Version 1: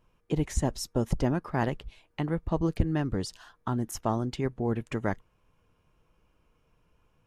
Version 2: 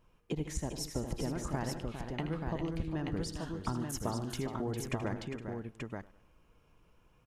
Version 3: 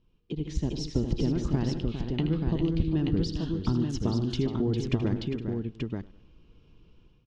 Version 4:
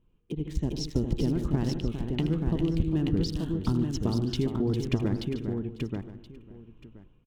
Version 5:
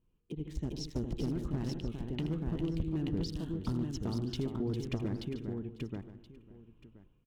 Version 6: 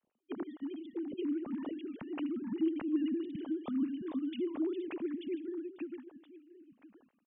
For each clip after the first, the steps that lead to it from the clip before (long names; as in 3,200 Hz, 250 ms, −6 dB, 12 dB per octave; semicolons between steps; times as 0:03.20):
downward compressor, threshold −33 dBFS, peak gain reduction 14 dB; on a send: multi-tap delay 79/146/152/404/465/882 ms −11.5/−18/−17.5/−8.5/−14/−4.5 dB; on the sum: feedback echo with a swinging delay time 100 ms, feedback 43%, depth 76 cents, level −21 dB
flat-topped bell 1,100 Hz −12.5 dB 2.4 octaves; automatic gain control gain up to 10 dB; low-pass filter 4,600 Hz 24 dB per octave
adaptive Wiener filter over 9 samples; high-shelf EQ 6,600 Hz +8.5 dB; single-tap delay 1,025 ms −17 dB
asymmetric clip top −20 dBFS; level −7 dB
three sine waves on the formant tracks; level −1 dB